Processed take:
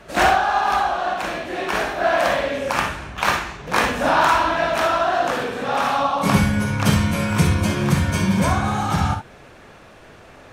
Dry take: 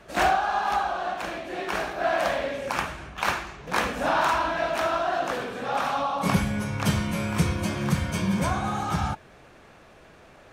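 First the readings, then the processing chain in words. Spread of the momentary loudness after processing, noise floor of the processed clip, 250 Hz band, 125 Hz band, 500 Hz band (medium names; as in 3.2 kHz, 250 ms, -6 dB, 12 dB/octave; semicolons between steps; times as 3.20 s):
7 LU, -45 dBFS, +6.5 dB, +7.5 dB, +6.0 dB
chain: gated-style reverb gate 80 ms rising, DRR 5 dB; trim +5.5 dB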